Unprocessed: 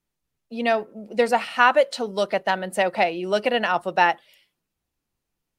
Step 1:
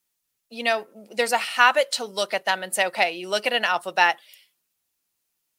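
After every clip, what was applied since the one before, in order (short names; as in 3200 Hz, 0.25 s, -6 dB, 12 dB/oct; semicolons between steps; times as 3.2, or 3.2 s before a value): tilt +3.5 dB/oct; gain -1 dB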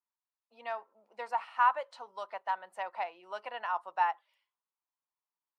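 band-pass 990 Hz, Q 4.3; gain -3.5 dB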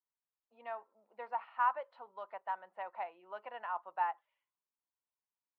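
air absorption 470 m; gain -3 dB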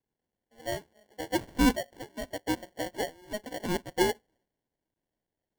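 sample-and-hold 35×; gain +8 dB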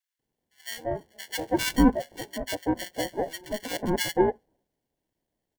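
bands offset in time highs, lows 0.19 s, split 1400 Hz; gain +4.5 dB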